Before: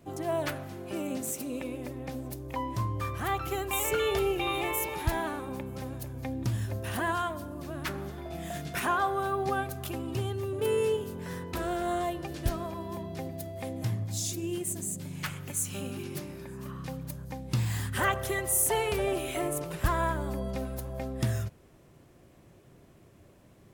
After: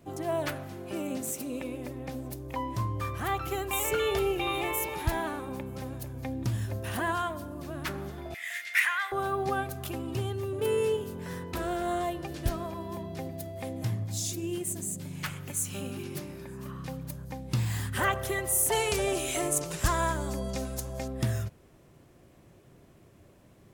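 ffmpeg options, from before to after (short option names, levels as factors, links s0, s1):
-filter_complex "[0:a]asettb=1/sr,asplit=3[s0][s1][s2];[s0]atrim=end=8.344[s3];[s1]atrim=start=8.34:end=9.12,asetpts=PTS-STARTPTS,afade=t=in:d=0.004:c=qsin,afade=t=out:st=0.776:d=0.004:c=qsin,highpass=f=2000:t=q:w=8.1[s4];[s2]atrim=start=9.116[s5];[s3][s4]acrossfade=d=0.004:c1=hsin:c2=qsin[s6];[s6][s5]acrossfade=d=0.004:c1=qsin:c2=hsin,asettb=1/sr,asplit=3[s7][s8][s9];[s7]atrim=end=18.724[s10];[s8]atrim=start=18.72:end=21.08,asetpts=PTS-STARTPTS,afade=t=in:d=0.004:c=qsin,afade=t=out:st=2.356:d=0.004:c=qsin,equalizer=f=6700:w=0.88:g=13.5[s11];[s9]atrim=start=21.076[s12];[s10][s11]acrossfade=d=0.004:c1=hsin:c2=qsin[s13];[s13][s12]acrossfade=d=0.004:c1=qsin:c2=hsin"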